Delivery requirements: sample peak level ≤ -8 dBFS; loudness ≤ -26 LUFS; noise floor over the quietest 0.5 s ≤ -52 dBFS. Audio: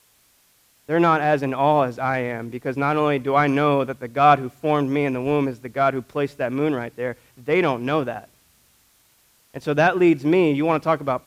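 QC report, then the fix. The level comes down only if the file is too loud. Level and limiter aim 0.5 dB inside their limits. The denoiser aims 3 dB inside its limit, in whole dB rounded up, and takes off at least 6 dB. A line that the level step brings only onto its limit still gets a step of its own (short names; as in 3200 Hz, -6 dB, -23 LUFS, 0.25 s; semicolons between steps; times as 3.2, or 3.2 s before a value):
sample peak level -4.0 dBFS: fail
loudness -21.0 LUFS: fail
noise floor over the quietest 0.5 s -60 dBFS: OK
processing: gain -5.5 dB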